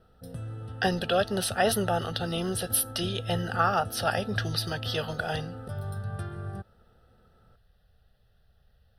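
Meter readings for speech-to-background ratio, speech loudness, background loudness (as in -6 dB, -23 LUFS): 10.0 dB, -28.5 LUFS, -38.5 LUFS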